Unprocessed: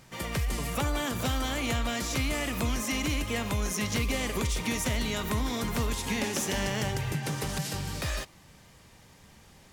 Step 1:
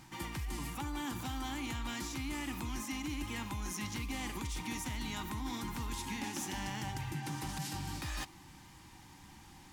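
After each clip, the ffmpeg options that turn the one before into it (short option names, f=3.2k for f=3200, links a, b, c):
-af "superequalizer=6b=2:7b=0.316:8b=0.316:9b=1.78,areverse,acompressor=threshold=-36dB:ratio=5,areverse,volume=-1dB"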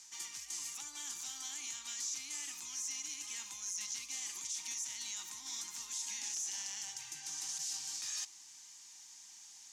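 -af "bandpass=f=6.4k:t=q:w=3.7:csg=0,alimiter=level_in=20dB:limit=-24dB:level=0:latency=1:release=19,volume=-20dB,volume=14dB"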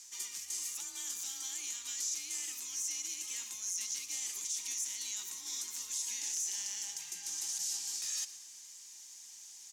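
-filter_complex "[0:a]afreqshift=27,equalizer=f=125:t=o:w=1:g=-6,equalizer=f=500:t=o:w=1:g=4,equalizer=f=1k:t=o:w=1:g=-5,equalizer=f=16k:t=o:w=1:g=11,asplit=5[a][b][c][d][e];[b]adelay=117,afreqshift=-59,volume=-15.5dB[f];[c]adelay=234,afreqshift=-118,volume=-21.9dB[g];[d]adelay=351,afreqshift=-177,volume=-28.3dB[h];[e]adelay=468,afreqshift=-236,volume=-34.6dB[i];[a][f][g][h][i]amix=inputs=5:normalize=0"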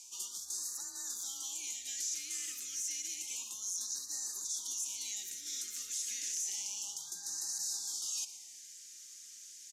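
-af "asoftclip=type=tanh:threshold=-26.5dB,aresample=32000,aresample=44100,afftfilt=real='re*(1-between(b*sr/1024,820*pow(2700/820,0.5+0.5*sin(2*PI*0.3*pts/sr))/1.41,820*pow(2700/820,0.5+0.5*sin(2*PI*0.3*pts/sr))*1.41))':imag='im*(1-between(b*sr/1024,820*pow(2700/820,0.5+0.5*sin(2*PI*0.3*pts/sr))/1.41,820*pow(2700/820,0.5+0.5*sin(2*PI*0.3*pts/sr))*1.41))':win_size=1024:overlap=0.75"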